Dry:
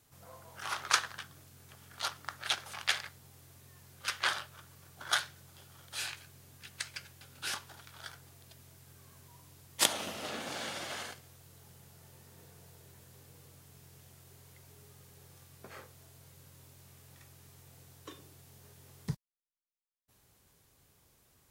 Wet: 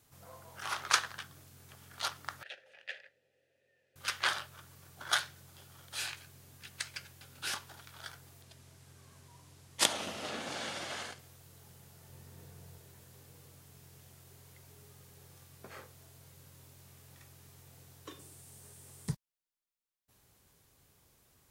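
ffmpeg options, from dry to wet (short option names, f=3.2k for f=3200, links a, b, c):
-filter_complex "[0:a]asettb=1/sr,asplit=3[a][b][c];[a]atrim=end=2.434[d];[b]atrim=start=2.43:end=3.96,asetpts=PTS-STARTPTS,afade=t=in:d=0.004:c=qsin,afade=t=out:st=1.526:d=0.004:c=qsin,asplit=3[e][f][g];[e]bandpass=f=530:t=q:w=8,volume=0dB[h];[f]bandpass=f=1.84k:t=q:w=8,volume=-6dB[i];[g]bandpass=f=2.48k:t=q:w=8,volume=-9dB[j];[h][i][j]amix=inputs=3:normalize=0[k];[c]atrim=start=3.956[l];[d][k]acrossfade=d=0.004:c1=hsin:c2=qsin[m];[m][l]acrossfade=d=0.004:c1=qsin:c2=hsin,asettb=1/sr,asplit=3[n][o][p];[n]atrim=end=8.424[q];[o]atrim=start=8.42:end=11.19,asetpts=PTS-STARTPTS,afade=t=in:d=0.004:c=qsin,afade=t=out:st=2.766:d=0.004:c=qsin,lowpass=10k[r];[p]atrim=start=11.186[s];[q][r]acrossfade=d=0.004:c1=hsin:c2=qsin[t];[t][s]acrossfade=d=0.004:c1=qsin:c2=hsin,asettb=1/sr,asplit=3[u][v][w];[u]atrim=end=12.094[x];[v]atrim=start=12.09:end=12.78,asetpts=PTS-STARTPTS,afade=t=in:d=0.004:c=qsin,afade=t=out:st=0.686:d=0.004:c=qsin,lowshelf=f=210:g=6.5[y];[w]atrim=start=12.776[z];[x][y]acrossfade=d=0.004:c1=hsin:c2=qsin[aa];[aa][z]acrossfade=d=0.004:c1=qsin:c2=hsin,asettb=1/sr,asplit=3[ab][ac][ad];[ab]atrim=end=18.194[ae];[ac]atrim=start=18.19:end=19.12,asetpts=PTS-STARTPTS,afade=t=in:d=0.004:c=qsin,afade=t=out:st=0.926:d=0.004:c=qsin,equalizer=f=8.7k:w=1.9:g=11.5[af];[ad]atrim=start=19.116[ag];[ae][af]acrossfade=d=0.004:c1=hsin:c2=qsin[ah];[ah][ag]acrossfade=d=0.004:c1=qsin:c2=hsin"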